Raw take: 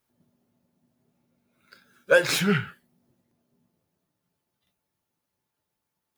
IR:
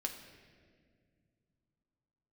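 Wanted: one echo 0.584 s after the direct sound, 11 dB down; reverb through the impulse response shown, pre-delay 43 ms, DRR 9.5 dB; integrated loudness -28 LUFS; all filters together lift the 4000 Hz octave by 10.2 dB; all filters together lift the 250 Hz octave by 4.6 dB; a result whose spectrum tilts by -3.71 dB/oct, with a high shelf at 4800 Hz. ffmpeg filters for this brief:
-filter_complex "[0:a]equalizer=f=250:t=o:g=7,equalizer=f=4k:t=o:g=8,highshelf=f=4.8k:g=9,aecho=1:1:584:0.282,asplit=2[a][b];[1:a]atrim=start_sample=2205,adelay=43[c];[b][c]afir=irnorm=-1:irlink=0,volume=-9.5dB[d];[a][d]amix=inputs=2:normalize=0,volume=-8.5dB"

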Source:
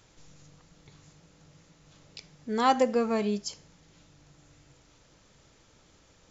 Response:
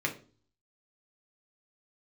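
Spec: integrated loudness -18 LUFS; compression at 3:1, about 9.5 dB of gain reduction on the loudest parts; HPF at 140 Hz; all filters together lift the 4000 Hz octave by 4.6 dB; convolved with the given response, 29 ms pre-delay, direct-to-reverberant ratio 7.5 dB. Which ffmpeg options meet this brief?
-filter_complex "[0:a]highpass=140,equalizer=f=4k:t=o:g=6,acompressor=threshold=-31dB:ratio=3,asplit=2[a][b];[1:a]atrim=start_sample=2205,adelay=29[c];[b][c]afir=irnorm=-1:irlink=0,volume=-15dB[d];[a][d]amix=inputs=2:normalize=0,volume=17dB"

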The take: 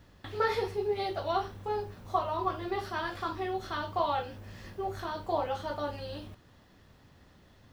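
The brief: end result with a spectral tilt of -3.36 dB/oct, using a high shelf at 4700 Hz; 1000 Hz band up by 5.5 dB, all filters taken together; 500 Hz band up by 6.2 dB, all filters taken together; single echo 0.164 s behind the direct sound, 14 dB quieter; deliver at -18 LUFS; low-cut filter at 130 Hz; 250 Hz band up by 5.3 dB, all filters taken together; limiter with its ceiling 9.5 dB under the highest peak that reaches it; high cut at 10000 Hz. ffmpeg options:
-af "highpass=130,lowpass=10k,equalizer=f=250:t=o:g=4.5,equalizer=f=500:t=o:g=5.5,equalizer=f=1k:t=o:g=5,highshelf=f=4.7k:g=-3,alimiter=limit=-19dB:level=0:latency=1,aecho=1:1:164:0.2,volume=12dB"

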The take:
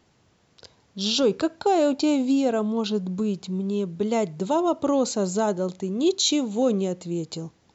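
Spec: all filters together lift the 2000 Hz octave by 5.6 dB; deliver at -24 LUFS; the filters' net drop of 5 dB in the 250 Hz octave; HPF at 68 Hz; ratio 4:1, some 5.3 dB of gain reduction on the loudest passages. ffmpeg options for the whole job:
-af "highpass=68,equalizer=f=250:t=o:g=-6.5,equalizer=f=2k:t=o:g=8,acompressor=threshold=-24dB:ratio=4,volume=5dB"

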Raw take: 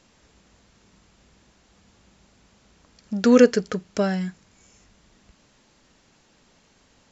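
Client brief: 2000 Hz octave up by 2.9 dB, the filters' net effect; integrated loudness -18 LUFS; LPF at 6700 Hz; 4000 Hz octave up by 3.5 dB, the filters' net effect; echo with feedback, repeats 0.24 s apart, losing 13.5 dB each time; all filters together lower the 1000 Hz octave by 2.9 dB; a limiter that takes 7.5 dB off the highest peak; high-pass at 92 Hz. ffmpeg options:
-af "highpass=92,lowpass=6.7k,equalizer=f=1k:t=o:g=-7,equalizer=f=2k:t=o:g=6,equalizer=f=4k:t=o:g=4,alimiter=limit=-9.5dB:level=0:latency=1,aecho=1:1:240|480:0.211|0.0444,volume=5.5dB"

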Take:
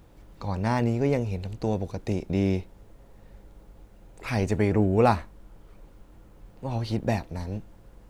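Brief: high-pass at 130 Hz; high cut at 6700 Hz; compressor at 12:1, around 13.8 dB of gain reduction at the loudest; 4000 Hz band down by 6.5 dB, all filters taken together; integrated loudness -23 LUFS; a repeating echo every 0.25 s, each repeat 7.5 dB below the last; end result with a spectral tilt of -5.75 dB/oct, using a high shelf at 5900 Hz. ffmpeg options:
-af "highpass=130,lowpass=6.7k,equalizer=f=4k:t=o:g=-6,highshelf=f=5.9k:g=-4.5,acompressor=threshold=-29dB:ratio=12,aecho=1:1:250|500|750|1000|1250:0.422|0.177|0.0744|0.0312|0.0131,volume=13dB"

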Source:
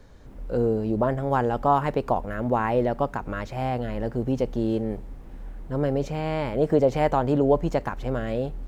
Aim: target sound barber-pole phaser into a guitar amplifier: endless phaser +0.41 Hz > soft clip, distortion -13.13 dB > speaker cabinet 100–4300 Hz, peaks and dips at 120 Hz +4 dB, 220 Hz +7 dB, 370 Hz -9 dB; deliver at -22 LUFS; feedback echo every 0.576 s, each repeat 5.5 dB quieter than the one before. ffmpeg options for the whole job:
-filter_complex "[0:a]aecho=1:1:576|1152|1728|2304|2880|3456|4032:0.531|0.281|0.149|0.079|0.0419|0.0222|0.0118,asplit=2[a][b];[b]afreqshift=0.41[c];[a][c]amix=inputs=2:normalize=1,asoftclip=threshold=-20dB,highpass=100,equalizer=f=120:t=q:w=4:g=4,equalizer=f=220:t=q:w=4:g=7,equalizer=f=370:t=q:w=4:g=-9,lowpass=f=4.3k:w=0.5412,lowpass=f=4.3k:w=1.3066,volume=7dB"

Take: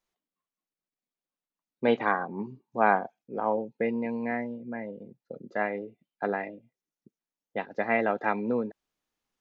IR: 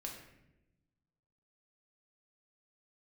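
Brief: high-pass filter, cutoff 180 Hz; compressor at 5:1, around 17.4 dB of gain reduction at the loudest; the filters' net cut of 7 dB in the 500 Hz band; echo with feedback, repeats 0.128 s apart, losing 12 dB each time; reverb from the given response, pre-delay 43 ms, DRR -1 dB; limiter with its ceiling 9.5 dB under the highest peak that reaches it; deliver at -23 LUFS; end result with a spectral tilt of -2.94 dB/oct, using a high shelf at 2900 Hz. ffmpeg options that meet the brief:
-filter_complex "[0:a]highpass=180,equalizer=f=500:t=o:g=-8.5,highshelf=f=2.9k:g=-3.5,acompressor=threshold=-40dB:ratio=5,alimiter=level_in=11dB:limit=-24dB:level=0:latency=1,volume=-11dB,aecho=1:1:128|256|384:0.251|0.0628|0.0157,asplit=2[a][b];[1:a]atrim=start_sample=2205,adelay=43[c];[b][c]afir=irnorm=-1:irlink=0,volume=3dB[d];[a][d]amix=inputs=2:normalize=0,volume=19.5dB"

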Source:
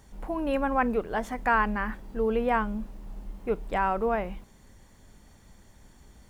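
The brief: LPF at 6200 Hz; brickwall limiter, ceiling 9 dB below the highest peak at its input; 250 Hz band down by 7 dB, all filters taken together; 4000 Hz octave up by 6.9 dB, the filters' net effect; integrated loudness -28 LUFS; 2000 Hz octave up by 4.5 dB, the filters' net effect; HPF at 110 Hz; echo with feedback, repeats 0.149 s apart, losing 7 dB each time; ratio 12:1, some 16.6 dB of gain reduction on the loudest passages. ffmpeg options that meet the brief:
-af "highpass=110,lowpass=6.2k,equalizer=f=250:t=o:g=-8,equalizer=f=2k:t=o:g=4.5,equalizer=f=4k:t=o:g=8.5,acompressor=threshold=-33dB:ratio=12,alimiter=level_in=5.5dB:limit=-24dB:level=0:latency=1,volume=-5.5dB,aecho=1:1:149|298|447|596|745:0.447|0.201|0.0905|0.0407|0.0183,volume=12dB"

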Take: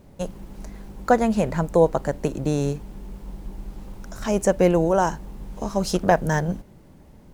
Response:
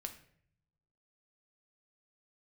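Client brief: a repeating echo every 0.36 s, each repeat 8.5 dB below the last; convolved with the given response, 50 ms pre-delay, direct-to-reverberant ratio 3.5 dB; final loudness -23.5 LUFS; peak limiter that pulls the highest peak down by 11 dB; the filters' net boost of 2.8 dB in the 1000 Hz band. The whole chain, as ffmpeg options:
-filter_complex "[0:a]equalizer=f=1k:t=o:g=4,alimiter=limit=-13dB:level=0:latency=1,aecho=1:1:360|720|1080|1440:0.376|0.143|0.0543|0.0206,asplit=2[a][b];[1:a]atrim=start_sample=2205,adelay=50[c];[b][c]afir=irnorm=-1:irlink=0,volume=-0.5dB[d];[a][d]amix=inputs=2:normalize=0,volume=0.5dB"

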